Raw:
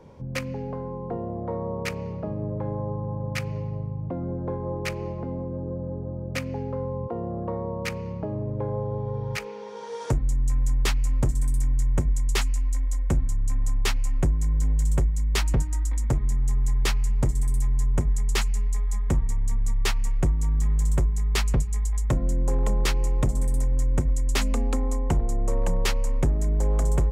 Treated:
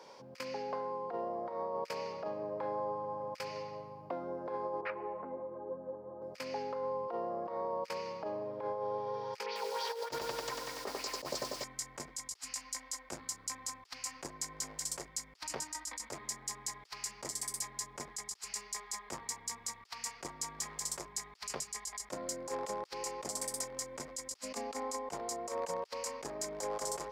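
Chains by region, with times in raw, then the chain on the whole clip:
4.81–6.22 LPF 1800 Hz 24 dB/oct + ensemble effect
9.46–11.64 LFO low-pass sine 3.3 Hz 430–4700 Hz + lo-fi delay 95 ms, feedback 80%, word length 8-bit, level -6 dB
whole clip: HPF 680 Hz 12 dB/oct; bell 4900 Hz +12 dB 0.55 oct; negative-ratio compressor -38 dBFS, ratio -0.5; gain -1 dB

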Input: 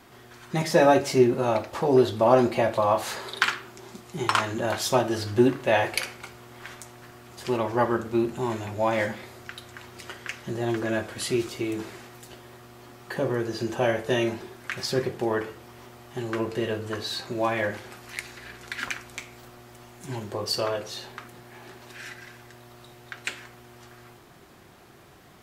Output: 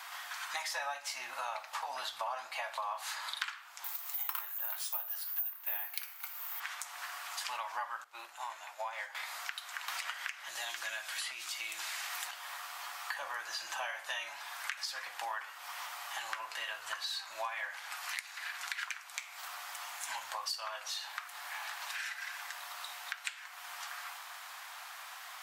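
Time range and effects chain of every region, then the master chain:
3.84–6.6 frequency shift -19 Hz + careless resampling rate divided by 3×, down none, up zero stuff
8.04–9.15 ladder high-pass 310 Hz, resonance 40% + upward expander, over -39 dBFS
9.88–12.31 bell 970 Hz -6.5 dB 1.9 oct + notches 60/120/180/240 Hz + three-band squash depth 100%
whole clip: inverse Chebyshev high-pass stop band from 430 Hz, stop band 40 dB; compressor 6:1, threshold -47 dBFS; gain +9.5 dB

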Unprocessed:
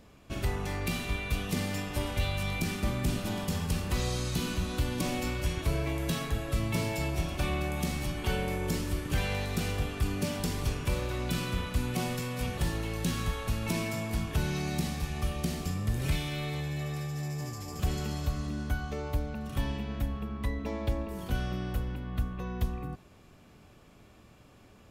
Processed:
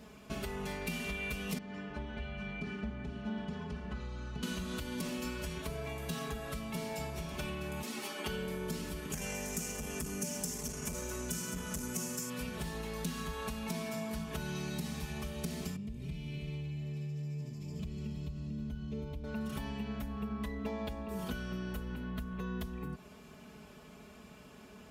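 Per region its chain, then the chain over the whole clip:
1.58–4.43 tape spacing loss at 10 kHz 31 dB + metallic resonator 63 Hz, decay 0.22 s, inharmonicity 0.03
7.82–8.26 HPF 270 Hz 24 dB/oct + ensemble effect
9.12–12.3 resonant high shelf 5000 Hz +8.5 dB, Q 3 + core saturation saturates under 350 Hz
15.76–19.24 EQ curve 180 Hz 0 dB, 1600 Hz -21 dB, 2400 Hz -8 dB, 12000 Hz -20 dB + echo 0.319 s -10 dB
whole clip: HPF 64 Hz; compressor, threshold -39 dBFS; comb 4.7 ms, depth 85%; gain +1.5 dB

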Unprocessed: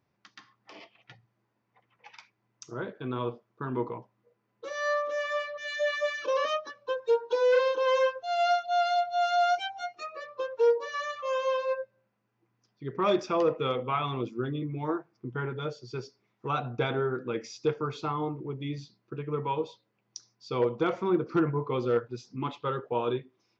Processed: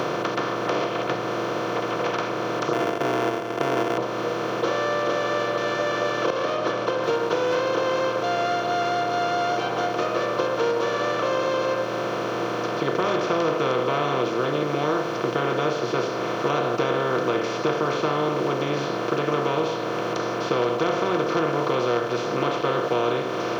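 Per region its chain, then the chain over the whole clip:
2.73–3.98 sample sorter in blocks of 64 samples + high shelf 3500 Hz -8 dB + fixed phaser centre 830 Hz, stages 8
6.3–7.04 LPF 4900 Hz 24 dB/oct + compressor, threshold -37 dBFS
whole clip: per-bin compression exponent 0.2; three-band squash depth 70%; gain -4.5 dB

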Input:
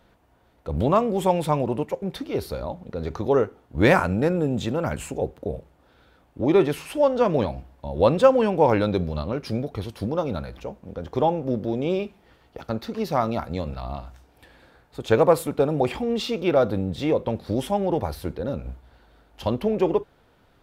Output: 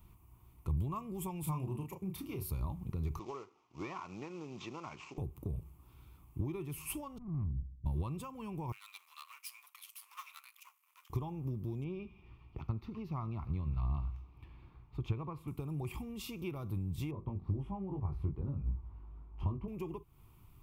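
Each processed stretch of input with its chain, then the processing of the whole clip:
1.43–2.5 HPF 88 Hz + doubler 32 ms -5 dB
3.19–5.18 CVSD 32 kbps + HPF 520 Hz + high shelf 3300 Hz -7.5 dB
7.18–7.86 inverse Chebyshev low-pass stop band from 1500 Hz, stop band 80 dB + tube stage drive 33 dB, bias 0.55
8.72–11.1 half-wave gain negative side -12 dB + inverse Chebyshev high-pass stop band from 230 Hz, stop band 80 dB
11.84–15.48 air absorption 260 m + thin delay 80 ms, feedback 76%, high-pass 1500 Hz, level -19 dB
17.11–19.68 LPF 1300 Hz + doubler 21 ms -3.5 dB
whole clip: bell 770 Hz -7 dB 1.5 oct; compressor 10:1, threshold -33 dBFS; EQ curve 130 Hz 0 dB, 250 Hz -13 dB, 360 Hz -8 dB, 520 Hz -24 dB, 1100 Hz -1 dB, 1600 Hz -26 dB, 2400 Hz -7 dB, 3900 Hz -18 dB, 13000 Hz +5 dB; gain +5 dB

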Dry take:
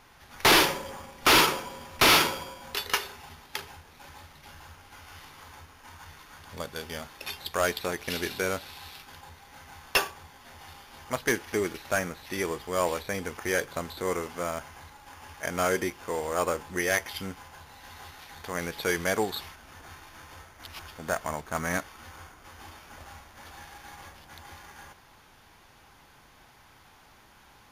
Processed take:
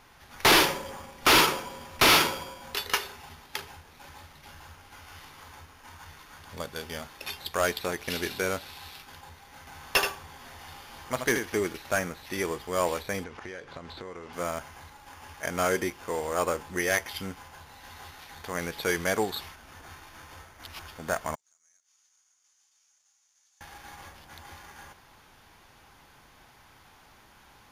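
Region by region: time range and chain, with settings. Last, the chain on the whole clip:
9.67–11.59 upward compressor, threshold -41 dBFS + echo 78 ms -6.5 dB
13.24–14.33 LPF 4500 Hz + compressor, threshold -37 dBFS
21.35–23.61 compressor, threshold -47 dBFS + band-pass 6600 Hz, Q 5.1
whole clip: dry

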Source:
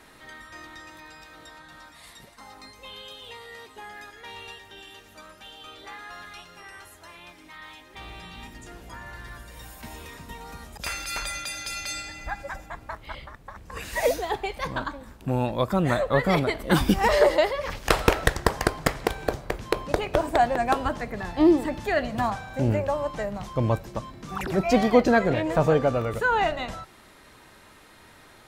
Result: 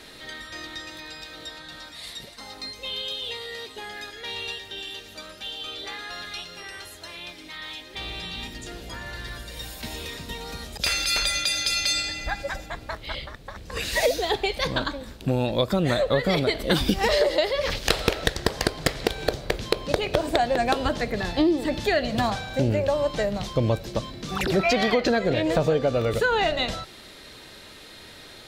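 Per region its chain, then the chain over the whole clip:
24.59–25.1 bell 1600 Hz +11 dB 2.2 oct + compressor 2.5:1, threshold -16 dBFS
whole clip: graphic EQ 500/1000/4000 Hz +4/-6/+10 dB; compressor 5:1, threshold -23 dBFS; gain +4.5 dB

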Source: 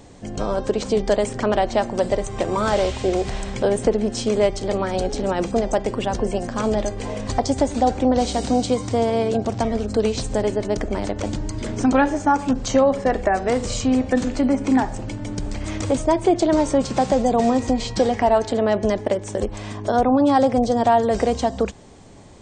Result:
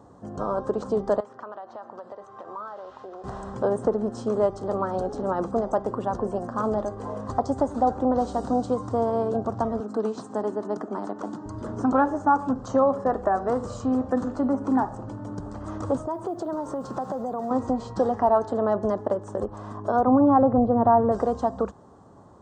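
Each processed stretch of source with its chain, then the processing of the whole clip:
1.2–3.24 HPF 1400 Hz 6 dB/oct + compressor, threshold -30 dBFS + air absorption 170 m
9.8–11.46 HPF 180 Hz 24 dB/oct + bell 540 Hz -8.5 dB 0.31 oct
16.06–17.51 HPF 130 Hz 6 dB/oct + modulation noise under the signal 31 dB + compressor 5:1, threshold -22 dBFS
20.07–21.12 Gaussian blur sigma 3.2 samples + low shelf 250 Hz +9.5 dB
whole clip: HPF 78 Hz; resonant high shelf 1700 Hz -11.5 dB, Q 3; notch 2200 Hz, Q 10; gain -5.5 dB

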